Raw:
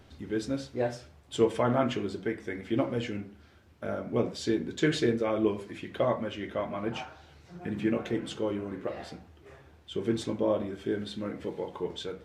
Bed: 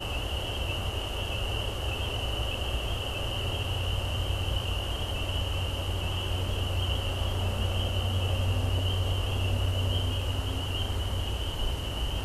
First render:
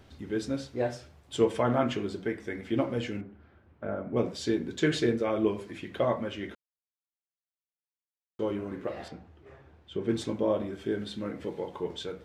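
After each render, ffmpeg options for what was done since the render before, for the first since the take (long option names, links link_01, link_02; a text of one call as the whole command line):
ffmpeg -i in.wav -filter_complex "[0:a]asettb=1/sr,asplit=3[link_01][link_02][link_03];[link_01]atrim=end=3.214[link_04];[link_02]atrim=start=3.21:end=4.17,asetpts=PTS-STARTPTS,afade=type=in:duration=0.004:curve=qsin,afade=type=out:start_time=0.956:duration=0.004:curve=qsin,lowpass=1800[link_05];[link_03]atrim=start=4.166[link_06];[link_04][link_05]acrossfade=duration=0.004:curve1=hsin:curve2=qsin[link_07];[link_07][link_06]acrossfade=duration=0.004:curve1=qsin:curve2=hsin,asettb=1/sr,asplit=3[link_08][link_09][link_10];[link_08]atrim=end=9.084[link_11];[link_09]atrim=start=9.08:end=10.09,asetpts=PTS-STARTPTS,afade=type=in:duration=0.004:curve=qsin,afade=type=out:start_time=1.006:duration=0.004:curve=qsin,aemphasis=mode=reproduction:type=75kf[link_12];[link_10]atrim=start=10.086[link_13];[link_11][link_12]acrossfade=duration=0.004:curve1=hsin:curve2=qsin[link_14];[link_14][link_13]acrossfade=duration=0.004:curve1=qsin:curve2=hsin,asplit=3[link_15][link_16][link_17];[link_15]atrim=end=6.55,asetpts=PTS-STARTPTS,afade=type=out:start_time=6.546:duration=0.004:curve=hsin[link_18];[link_16]atrim=start=6.55:end=8.39,asetpts=PTS-STARTPTS,volume=0[link_19];[link_17]atrim=start=8.39,asetpts=PTS-STARTPTS,afade=type=in:duration=0.004:curve=hsin[link_20];[link_18][link_19][link_20]concat=n=3:v=0:a=1" out.wav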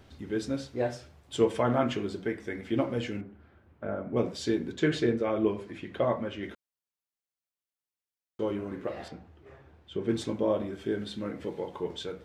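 ffmpeg -i in.wav -filter_complex "[0:a]asettb=1/sr,asplit=3[link_01][link_02][link_03];[link_01]atrim=end=4.724[link_04];[link_02]atrim=start=4.72:end=6.43,asetpts=PTS-STARTPTS,afade=type=in:duration=0.004:curve=qsin,afade=type=out:start_time=1.706:duration=0.004:curve=qsin,highshelf=frequency=4500:gain=-8[link_05];[link_03]atrim=start=6.426[link_06];[link_04][link_05]acrossfade=duration=0.004:curve1=hsin:curve2=qsin[link_07];[link_07][link_06]acrossfade=duration=0.004:curve1=qsin:curve2=hsin" out.wav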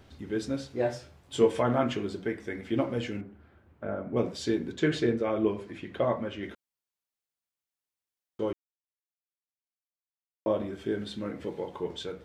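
ffmpeg -i in.wav -filter_complex "[0:a]asettb=1/sr,asplit=3[link_01][link_02][link_03];[link_01]atrim=end=0.684[link_04];[link_02]atrim=start=0.68:end=1.62,asetpts=PTS-STARTPTS,afade=type=in:duration=0.004:curve=qsin,afade=type=out:start_time=0.936:duration=0.004:curve=qsin,asplit=2[link_05][link_06];[link_06]adelay=22,volume=-6dB[link_07];[link_05][link_07]amix=inputs=2:normalize=0,atrim=end_sample=41454[link_08];[link_03]atrim=start=1.616[link_09];[link_04][link_08]acrossfade=duration=0.004:curve1=hsin:curve2=qsin[link_10];[link_10][link_09]acrossfade=duration=0.004:curve1=qsin:curve2=hsin,asplit=3[link_11][link_12][link_13];[link_11]atrim=end=8.53,asetpts=PTS-STARTPTS,afade=type=out:start_time=8.526:duration=0.004:curve=hsin[link_14];[link_12]atrim=start=8.53:end=10.46,asetpts=PTS-STARTPTS,volume=0[link_15];[link_13]atrim=start=10.46,asetpts=PTS-STARTPTS,afade=type=in:duration=0.004:curve=hsin[link_16];[link_14][link_15][link_16]concat=n=3:v=0:a=1" out.wav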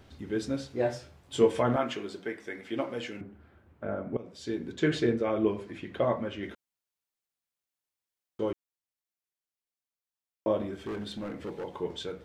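ffmpeg -i in.wav -filter_complex "[0:a]asettb=1/sr,asplit=3[link_01][link_02][link_03];[link_01]atrim=end=1.764[link_04];[link_02]atrim=start=1.76:end=3.21,asetpts=PTS-STARTPTS,afade=type=in:duration=0.004:curve=qsin,afade=type=out:start_time=1.446:duration=0.004:curve=qsin,highpass=frequency=480:poles=1[link_05];[link_03]atrim=start=3.206[link_06];[link_04][link_05]acrossfade=duration=0.004:curve1=hsin:curve2=qsin[link_07];[link_07][link_06]acrossfade=duration=0.004:curve1=qsin:curve2=hsin,asettb=1/sr,asplit=3[link_08][link_09][link_10];[link_08]atrim=end=10.794[link_11];[link_09]atrim=start=10.79:end=11.64,asetpts=PTS-STARTPTS,afade=type=in:duration=0.004:curve=qsin,afade=type=out:start_time=0.846:duration=0.004:curve=qsin,volume=32.5dB,asoftclip=hard,volume=-32.5dB[link_12];[link_10]atrim=start=11.636[link_13];[link_11][link_12]acrossfade=duration=0.004:curve1=hsin:curve2=qsin[link_14];[link_14][link_13]acrossfade=duration=0.004:curve1=qsin:curve2=hsin,asplit=2[link_15][link_16];[link_15]atrim=end=4.17,asetpts=PTS-STARTPTS,afade=type=out:start_time=4.166:duration=0.004:curve=hsin:silence=0.0841395[link_17];[link_16]atrim=start=4.17,asetpts=PTS-STARTPTS,afade=type=in:duration=0.71:silence=0.0841395[link_18];[link_17][link_18]concat=n=2:v=0:a=1" out.wav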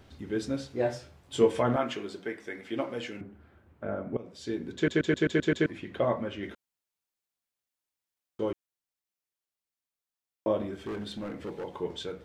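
ffmpeg -i in.wav -filter_complex "[0:a]asplit=8[link_01][link_02][link_03][link_04][link_05][link_06][link_07][link_08];[link_01]atrim=end=4.882[link_09];[link_02]atrim=start=4.748:end=4.882[link_10];[link_03]atrim=start=4.748:end=4.882[link_11];[link_04]atrim=start=4.748:end=4.882[link_12];[link_05]atrim=start=4.748:end=4.882[link_13];[link_06]atrim=start=4.748:end=4.882[link_14];[link_07]atrim=start=4.748:end=4.882[link_15];[link_08]atrim=start=5.658[link_16];[link_09][link_10]acrossfade=duration=0.004:curve1=hsin:curve2=hsin[link_17];[link_17][link_11]acrossfade=duration=0.004:curve1=hsin:curve2=hsin[link_18];[link_18][link_12]acrossfade=duration=0.004:curve1=hsin:curve2=hsin[link_19];[link_19][link_13]acrossfade=duration=0.004:curve1=hsin:curve2=hsin[link_20];[link_20][link_14]acrossfade=duration=0.004:curve1=hsin:curve2=hsin[link_21];[link_21][link_15]acrossfade=duration=0.004:curve1=hsin:curve2=hsin[link_22];[link_22][link_16]acrossfade=duration=0.004:curve1=hsin:curve2=hsin" out.wav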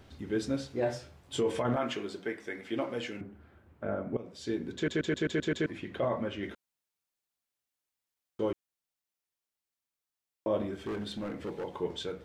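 ffmpeg -i in.wav -af "alimiter=limit=-21dB:level=0:latency=1:release=21" out.wav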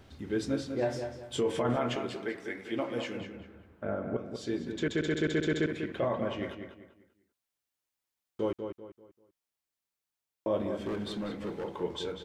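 ffmpeg -i in.wav -filter_complex "[0:a]asplit=2[link_01][link_02];[link_02]adelay=195,lowpass=frequency=3400:poles=1,volume=-7dB,asplit=2[link_03][link_04];[link_04]adelay=195,lowpass=frequency=3400:poles=1,volume=0.34,asplit=2[link_05][link_06];[link_06]adelay=195,lowpass=frequency=3400:poles=1,volume=0.34,asplit=2[link_07][link_08];[link_08]adelay=195,lowpass=frequency=3400:poles=1,volume=0.34[link_09];[link_01][link_03][link_05][link_07][link_09]amix=inputs=5:normalize=0" out.wav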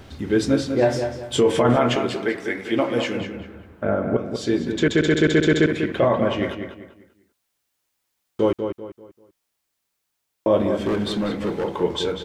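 ffmpeg -i in.wav -af "volume=12dB" out.wav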